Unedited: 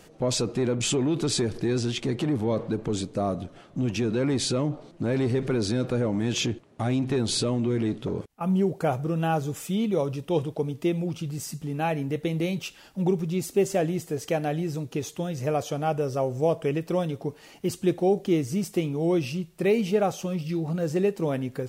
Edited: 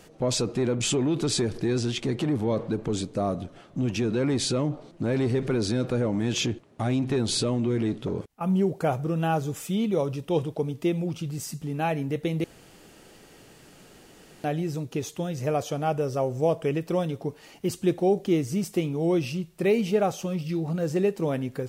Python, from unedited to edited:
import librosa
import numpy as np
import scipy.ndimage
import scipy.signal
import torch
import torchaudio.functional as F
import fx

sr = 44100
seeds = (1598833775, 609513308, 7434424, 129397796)

y = fx.edit(x, sr, fx.room_tone_fill(start_s=12.44, length_s=2.0), tone=tone)